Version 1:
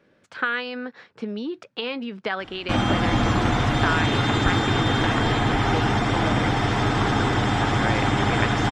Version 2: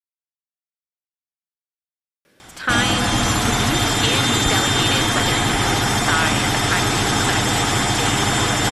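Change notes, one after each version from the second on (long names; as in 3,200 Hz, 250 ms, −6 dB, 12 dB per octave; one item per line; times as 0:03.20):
speech: entry +2.25 s
master: remove head-to-tape spacing loss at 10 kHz 26 dB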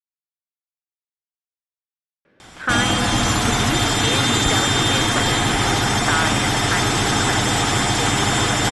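speech: add low-pass filter 2,200 Hz 12 dB per octave
master: add low-pass filter 11,000 Hz 24 dB per octave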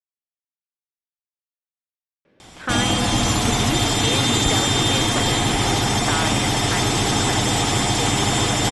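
master: add parametric band 1,500 Hz −7 dB 0.75 octaves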